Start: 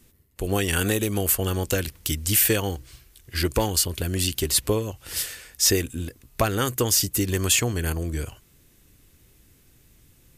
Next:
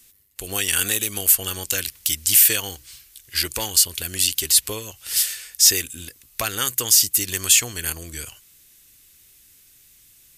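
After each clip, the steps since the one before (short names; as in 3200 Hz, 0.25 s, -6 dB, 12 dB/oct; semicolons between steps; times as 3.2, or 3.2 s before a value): tilt shelf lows -10 dB, about 1400 Hz; in parallel at 0 dB: limiter -7 dBFS, peak gain reduction 9 dB; on the sum: gain -6.5 dB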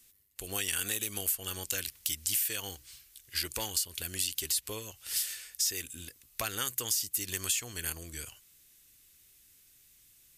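compressor 6:1, threshold -19 dBFS, peak gain reduction 9.5 dB; gain -8.5 dB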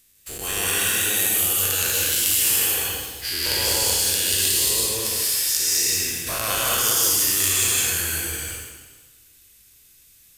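spectral dilation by 0.24 s; in parallel at -11.5 dB: companded quantiser 2-bit; on the sum: reverb RT60 1.3 s, pre-delay 0.146 s, DRR -3 dB; gain -2 dB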